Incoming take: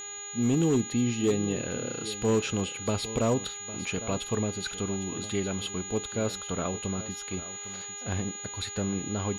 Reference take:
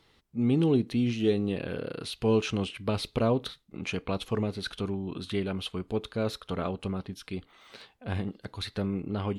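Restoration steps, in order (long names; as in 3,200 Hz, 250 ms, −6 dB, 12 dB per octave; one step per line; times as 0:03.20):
clipped peaks rebuilt −18.5 dBFS
hum removal 408.2 Hz, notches 10
notch filter 6,800 Hz, Q 30
echo removal 805 ms −15 dB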